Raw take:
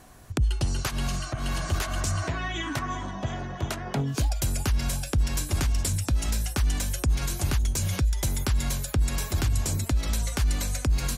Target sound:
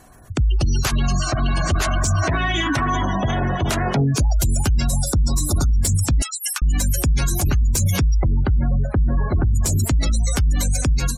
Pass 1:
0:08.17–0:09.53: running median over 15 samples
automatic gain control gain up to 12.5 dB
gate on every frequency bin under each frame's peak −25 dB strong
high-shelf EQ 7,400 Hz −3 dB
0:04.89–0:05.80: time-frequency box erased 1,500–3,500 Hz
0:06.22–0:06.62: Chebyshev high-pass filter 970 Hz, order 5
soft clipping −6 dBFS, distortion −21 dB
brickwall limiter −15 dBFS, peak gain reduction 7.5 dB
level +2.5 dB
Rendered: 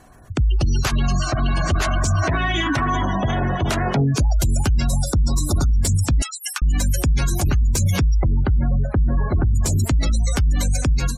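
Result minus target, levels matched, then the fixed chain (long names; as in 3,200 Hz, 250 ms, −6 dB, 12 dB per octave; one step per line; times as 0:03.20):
8,000 Hz band −3.0 dB
0:08.17–0:09.53: running median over 15 samples
automatic gain control gain up to 12.5 dB
gate on every frequency bin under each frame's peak −25 dB strong
high-shelf EQ 7,400 Hz +5.5 dB
0:04.89–0:05.80: time-frequency box erased 1,500–3,500 Hz
0:06.22–0:06.62: Chebyshev high-pass filter 970 Hz, order 5
soft clipping −6 dBFS, distortion −21 dB
brickwall limiter −15 dBFS, peak gain reduction 8 dB
level +2.5 dB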